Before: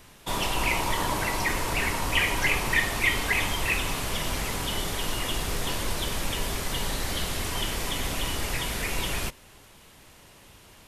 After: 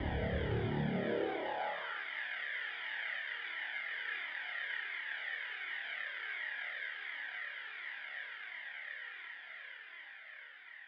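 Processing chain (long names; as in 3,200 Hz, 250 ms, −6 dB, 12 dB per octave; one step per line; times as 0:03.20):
extreme stretch with random phases 23×, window 0.50 s, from 0:08.95
decimation without filtering 30×
single-sideband voice off tune −310 Hz 250–3,500 Hz
flutter between parallel walls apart 4.7 metres, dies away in 0.62 s
on a send at −12.5 dB: convolution reverb RT60 1.7 s, pre-delay 35 ms
on the sum: high-pass filter sweep 64 Hz → 1,800 Hz, 0:00.37–0:02.07
flanger whose copies keep moving one way falling 1.4 Hz
level −2.5 dB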